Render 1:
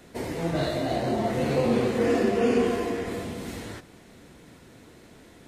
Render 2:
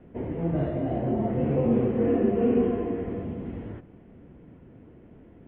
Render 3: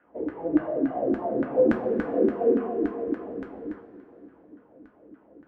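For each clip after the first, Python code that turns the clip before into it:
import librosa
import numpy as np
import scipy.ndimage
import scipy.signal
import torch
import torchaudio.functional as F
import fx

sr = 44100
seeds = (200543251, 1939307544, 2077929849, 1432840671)

y1 = scipy.signal.sosfilt(scipy.signal.butter(12, 3200.0, 'lowpass', fs=sr, output='sos'), x)
y1 = fx.tilt_shelf(y1, sr, db=9.5, hz=830.0)
y1 = y1 * librosa.db_to_amplitude(-6.0)
y2 = fx.filter_lfo_bandpass(y1, sr, shape='saw_down', hz=3.5, low_hz=280.0, high_hz=1600.0, q=4.5)
y2 = fx.rev_double_slope(y2, sr, seeds[0], early_s=0.23, late_s=3.2, knee_db=-18, drr_db=2.5)
y2 = y2 * librosa.db_to_amplitude(8.0)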